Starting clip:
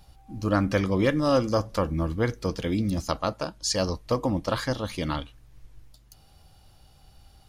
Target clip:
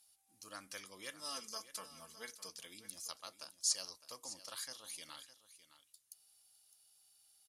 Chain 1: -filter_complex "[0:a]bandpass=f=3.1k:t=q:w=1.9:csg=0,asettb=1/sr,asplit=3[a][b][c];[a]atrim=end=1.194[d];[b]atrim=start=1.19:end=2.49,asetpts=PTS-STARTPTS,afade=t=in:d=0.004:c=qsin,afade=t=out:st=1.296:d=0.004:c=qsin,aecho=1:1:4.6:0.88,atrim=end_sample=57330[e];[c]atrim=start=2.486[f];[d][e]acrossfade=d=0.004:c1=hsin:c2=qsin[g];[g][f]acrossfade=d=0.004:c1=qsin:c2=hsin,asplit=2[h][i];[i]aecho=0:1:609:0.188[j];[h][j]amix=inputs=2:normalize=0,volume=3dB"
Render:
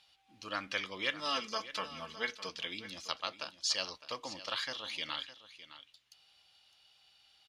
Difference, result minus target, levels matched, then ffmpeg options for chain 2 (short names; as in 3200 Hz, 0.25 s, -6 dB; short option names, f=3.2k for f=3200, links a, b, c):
8000 Hz band -10.5 dB
-filter_complex "[0:a]bandpass=f=10k:t=q:w=1.9:csg=0,asettb=1/sr,asplit=3[a][b][c];[a]atrim=end=1.194[d];[b]atrim=start=1.19:end=2.49,asetpts=PTS-STARTPTS,afade=t=in:d=0.004:c=qsin,afade=t=out:st=1.296:d=0.004:c=qsin,aecho=1:1:4.6:0.88,atrim=end_sample=57330[e];[c]atrim=start=2.486[f];[d][e]acrossfade=d=0.004:c1=hsin:c2=qsin[g];[g][f]acrossfade=d=0.004:c1=qsin:c2=hsin,asplit=2[h][i];[i]aecho=0:1:609:0.188[j];[h][j]amix=inputs=2:normalize=0,volume=3dB"